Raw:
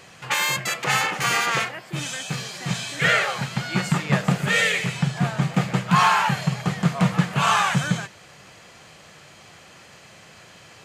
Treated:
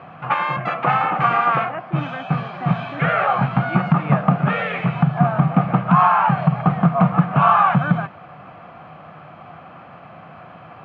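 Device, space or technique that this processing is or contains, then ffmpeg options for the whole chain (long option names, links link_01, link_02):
bass amplifier: -filter_complex "[0:a]acompressor=threshold=-21dB:ratio=4,highpass=64,equalizer=frequency=160:width_type=q:width=4:gain=6,equalizer=frequency=260:width_type=q:width=4:gain=5,equalizer=frequency=420:width_type=q:width=4:gain=-5,equalizer=frequency=720:width_type=q:width=4:gain=10,equalizer=frequency=1200:width_type=q:width=4:gain=8,equalizer=frequency=1900:width_type=q:width=4:gain=-9,lowpass=frequency=2200:width=0.5412,lowpass=frequency=2200:width=1.3066,asettb=1/sr,asplit=3[link_01][link_02][link_03];[link_01]atrim=end=3.164[link_04];[link_02]atrim=start=3.16:end=3.7,asetpts=PTS-STARTPTS,afade=type=in:duration=0.004:curve=qsin,afade=type=out:start_time=0.536:duration=0.004:curve=qsin,asplit=2[link_05][link_06];[link_06]adelay=16,volume=-5dB[link_07];[link_05][link_07]amix=inputs=2:normalize=0,atrim=end_sample=23814[link_08];[link_03]atrim=start=3.696[link_09];[link_04][link_08]acrossfade=duration=0.004:curve1=hsin:curve2=qsin[link_10];[link_10][link_09]acrossfade=duration=0.004:curve1=qsin:curve2=hsin,volume=5.5dB"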